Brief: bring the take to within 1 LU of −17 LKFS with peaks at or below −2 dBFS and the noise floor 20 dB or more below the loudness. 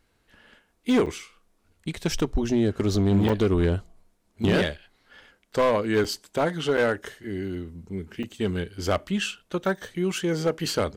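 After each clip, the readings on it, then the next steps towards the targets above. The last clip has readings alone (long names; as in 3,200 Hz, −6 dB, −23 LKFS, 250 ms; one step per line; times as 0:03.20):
share of clipped samples 1.2%; peaks flattened at −15.5 dBFS; number of dropouts 5; longest dropout 5.6 ms; integrated loudness −26.0 LKFS; sample peak −15.5 dBFS; target loudness −17.0 LKFS
→ clipped peaks rebuilt −15.5 dBFS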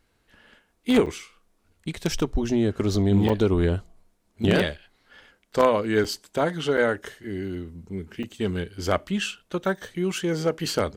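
share of clipped samples 0.0%; number of dropouts 5; longest dropout 5.6 ms
→ repair the gap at 0:01.06/0:03.29/0:06.04/0:06.77/0:08.23, 5.6 ms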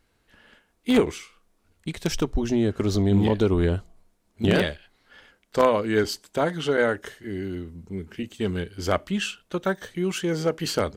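number of dropouts 0; integrated loudness −25.0 LKFS; sample peak −6.5 dBFS; target loudness −17.0 LKFS
→ level +8 dB
brickwall limiter −2 dBFS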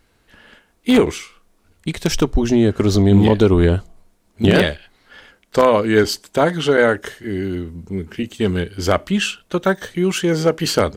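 integrated loudness −17.5 LKFS; sample peak −2.0 dBFS; background noise floor −61 dBFS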